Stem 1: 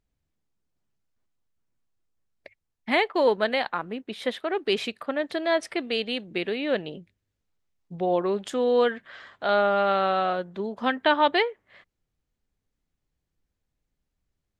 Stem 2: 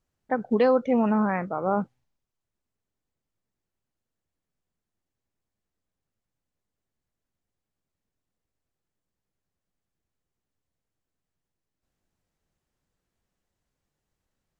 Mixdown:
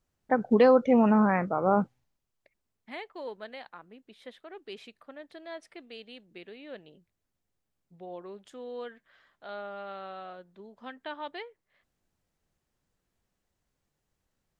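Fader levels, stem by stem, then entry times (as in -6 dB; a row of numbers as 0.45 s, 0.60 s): -18.0 dB, +1.0 dB; 0.00 s, 0.00 s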